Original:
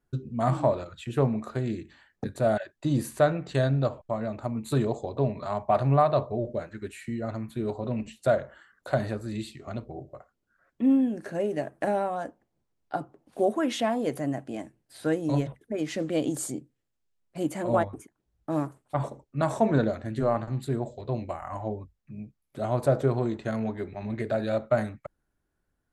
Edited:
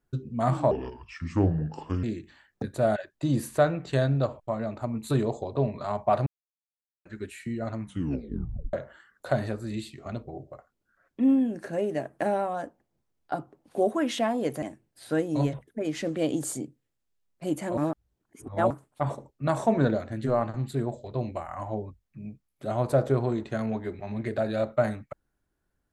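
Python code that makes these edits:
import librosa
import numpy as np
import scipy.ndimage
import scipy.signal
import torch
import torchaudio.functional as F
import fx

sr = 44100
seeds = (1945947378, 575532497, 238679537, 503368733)

y = fx.edit(x, sr, fx.speed_span(start_s=0.71, length_s=0.94, speed=0.71),
    fx.silence(start_s=5.88, length_s=0.79),
    fx.tape_stop(start_s=7.42, length_s=0.93),
    fx.cut(start_s=14.24, length_s=0.32),
    fx.reverse_span(start_s=17.71, length_s=0.93), tone=tone)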